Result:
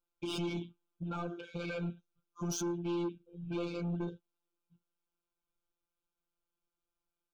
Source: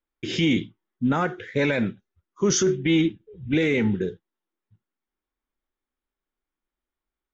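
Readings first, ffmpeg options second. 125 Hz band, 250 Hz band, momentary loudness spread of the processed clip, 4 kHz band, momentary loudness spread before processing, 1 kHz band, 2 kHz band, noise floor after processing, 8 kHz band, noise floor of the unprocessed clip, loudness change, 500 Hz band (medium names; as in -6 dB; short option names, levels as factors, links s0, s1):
-11.5 dB, -14.5 dB, 10 LU, -15.0 dB, 9 LU, -12.5 dB, -19.5 dB, under -85 dBFS, no reading, under -85 dBFS, -14.5 dB, -15.0 dB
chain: -af "alimiter=limit=0.1:level=0:latency=1:release=217,afftfilt=real='hypot(re,im)*cos(PI*b)':imag='0':win_size=1024:overlap=0.75,asoftclip=type=tanh:threshold=0.0282,asuperstop=centerf=1900:order=12:qfactor=3"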